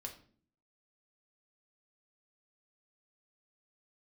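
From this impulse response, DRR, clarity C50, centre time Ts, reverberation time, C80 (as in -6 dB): 1.5 dB, 10.5 dB, 15 ms, 0.50 s, 15.0 dB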